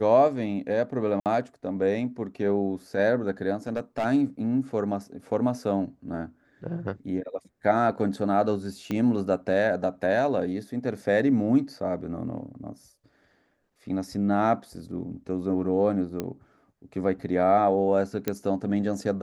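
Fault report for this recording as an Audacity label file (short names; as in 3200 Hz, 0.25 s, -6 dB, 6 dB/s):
1.200000	1.260000	gap 58 ms
3.670000	4.060000	clipped -22 dBFS
8.910000	8.910000	pop -17 dBFS
16.200000	16.200000	pop -16 dBFS
18.280000	18.280000	pop -12 dBFS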